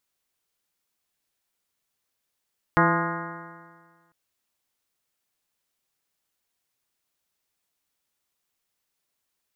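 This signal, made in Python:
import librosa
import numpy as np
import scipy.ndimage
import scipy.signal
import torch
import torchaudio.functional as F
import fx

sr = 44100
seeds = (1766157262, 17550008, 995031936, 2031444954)

y = fx.additive_stiff(sr, length_s=1.35, hz=166.0, level_db=-21.5, upper_db=(-1, -5.5, -4.5, -2.5, 0, -1, -2.0, -5, -6.0, -17), decay_s=1.62, stiffness=0.0027)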